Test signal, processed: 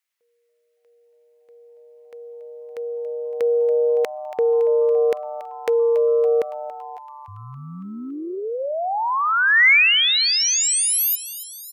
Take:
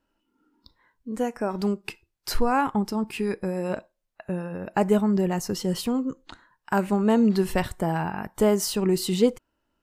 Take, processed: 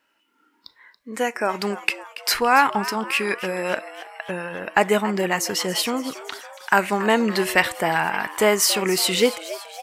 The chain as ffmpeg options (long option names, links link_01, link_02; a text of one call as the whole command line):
ffmpeg -i in.wav -filter_complex "[0:a]highpass=frequency=930:poles=1,equalizer=frequency=2100:width_type=o:width=0.86:gain=8.5,acontrast=35,asplit=7[link_01][link_02][link_03][link_04][link_05][link_06][link_07];[link_02]adelay=281,afreqshift=140,volume=-15dB[link_08];[link_03]adelay=562,afreqshift=280,volume=-19.4dB[link_09];[link_04]adelay=843,afreqshift=420,volume=-23.9dB[link_10];[link_05]adelay=1124,afreqshift=560,volume=-28.3dB[link_11];[link_06]adelay=1405,afreqshift=700,volume=-32.7dB[link_12];[link_07]adelay=1686,afreqshift=840,volume=-37.2dB[link_13];[link_01][link_08][link_09][link_10][link_11][link_12][link_13]amix=inputs=7:normalize=0,volume=4dB" out.wav